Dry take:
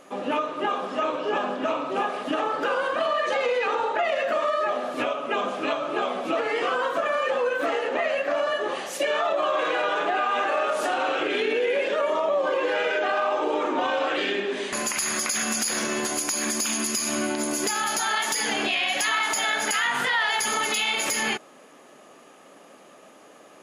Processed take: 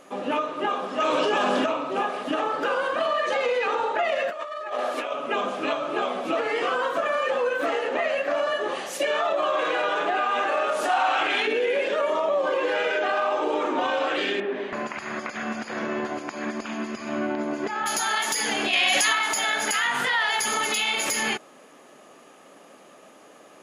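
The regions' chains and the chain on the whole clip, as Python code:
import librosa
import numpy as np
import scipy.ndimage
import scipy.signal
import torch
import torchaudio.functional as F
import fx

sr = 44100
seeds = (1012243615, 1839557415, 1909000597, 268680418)

y = fx.chain(x, sr, fx.high_shelf(hz=3300.0, db=10.5),
    fx.env_flatten(amount_pct=100), at=(1.0, 1.66))
y = fx.chain(y, sr, fx.highpass(hz=400.0, slope=12),
    fx.over_compress(threshold_db=-29.0, ratio=-0.5), at=(4.3, 5.12))
y = fx.chain(y, sr, fx.low_shelf_res(hz=610.0, db=-7.0, q=3.0),
    fx.env_flatten(amount_pct=50), at=(10.89, 11.47))
y = fx.chain(y, sr, fx.lowpass(hz=1900.0, slope=12),
    fx.peak_eq(hz=670.0, db=3.0, octaves=0.31), at=(14.4, 17.86))
y = fx.chain(y, sr, fx.lowpass(hz=12000.0, slope=12),
    fx.high_shelf(hz=5100.0, db=6.5),
    fx.env_flatten(amount_pct=100), at=(18.73, 19.13))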